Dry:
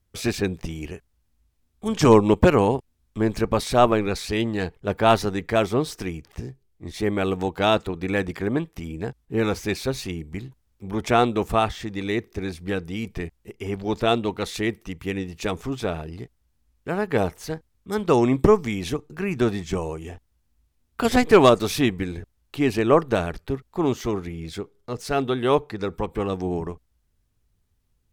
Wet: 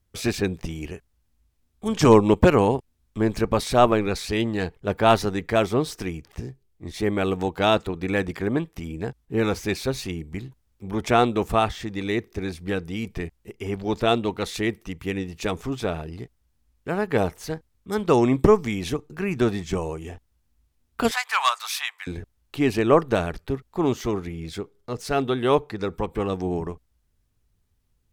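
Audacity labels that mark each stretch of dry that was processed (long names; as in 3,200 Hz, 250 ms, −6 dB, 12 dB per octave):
21.110000	22.070000	Butterworth high-pass 910 Hz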